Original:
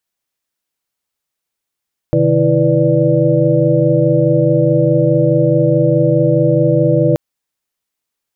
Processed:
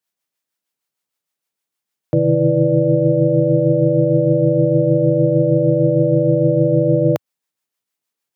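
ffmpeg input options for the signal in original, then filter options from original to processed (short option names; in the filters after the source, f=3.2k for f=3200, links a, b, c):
-f lavfi -i "aevalsrc='0.168*(sin(2*PI*130.81*t)+sin(2*PI*155.56*t)+sin(2*PI*329.63*t)+sin(2*PI*493.88*t)+sin(2*PI*587.33*t))':d=5.03:s=44100"
-filter_complex "[0:a]highpass=f=110:w=0.5412,highpass=f=110:w=1.3066,acrossover=split=550[a][b];[a]aeval=exprs='val(0)*(1-0.5/2+0.5/2*cos(2*PI*6.5*n/s))':c=same[c];[b]aeval=exprs='val(0)*(1-0.5/2-0.5/2*cos(2*PI*6.5*n/s))':c=same[d];[c][d]amix=inputs=2:normalize=0"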